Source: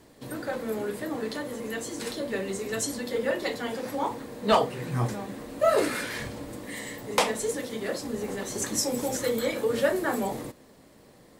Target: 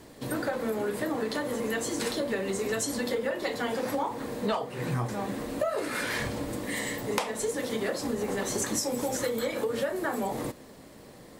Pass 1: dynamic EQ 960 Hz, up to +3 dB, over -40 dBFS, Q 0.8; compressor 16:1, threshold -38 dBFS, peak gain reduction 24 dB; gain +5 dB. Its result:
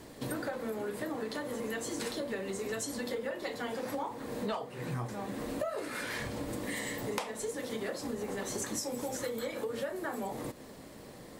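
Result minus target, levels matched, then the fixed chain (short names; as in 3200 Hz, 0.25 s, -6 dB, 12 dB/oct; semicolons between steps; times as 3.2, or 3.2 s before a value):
compressor: peak gain reduction +6.5 dB
dynamic EQ 960 Hz, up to +3 dB, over -40 dBFS, Q 0.8; compressor 16:1, threshold -31 dBFS, peak gain reduction 17.5 dB; gain +5 dB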